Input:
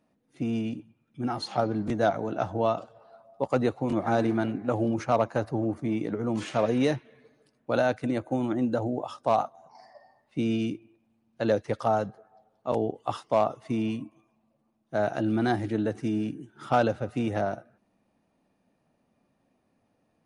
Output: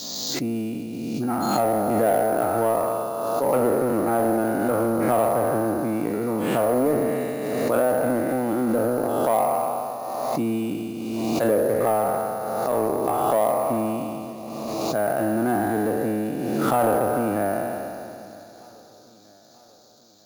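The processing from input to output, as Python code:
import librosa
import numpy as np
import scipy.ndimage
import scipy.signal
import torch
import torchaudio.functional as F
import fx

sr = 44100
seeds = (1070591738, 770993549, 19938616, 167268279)

p1 = fx.spec_trails(x, sr, decay_s=2.45)
p2 = fx.env_lowpass_down(p1, sr, base_hz=1200.0, full_db=-17.0)
p3 = fx.highpass(p2, sr, hz=210.0, slope=6)
p4 = fx.high_shelf(p3, sr, hz=2300.0, db=-11.5)
p5 = 10.0 ** (-22.5 / 20.0) * (np.abs((p4 / 10.0 ** (-22.5 / 20.0) + 3.0) % 4.0 - 2.0) - 1.0)
p6 = p4 + (p5 * 10.0 ** (-11.0 / 20.0))
p7 = fx.dmg_noise_band(p6, sr, seeds[0], low_hz=3800.0, high_hz=7200.0, level_db=-56.0)
p8 = p7 + fx.echo_feedback(p7, sr, ms=943, feedback_pct=53, wet_db=-24, dry=0)
p9 = np.repeat(scipy.signal.resample_poly(p8, 1, 4), 4)[:len(p8)]
p10 = fx.pre_swell(p9, sr, db_per_s=24.0)
y = p10 * 10.0 ** (1.0 / 20.0)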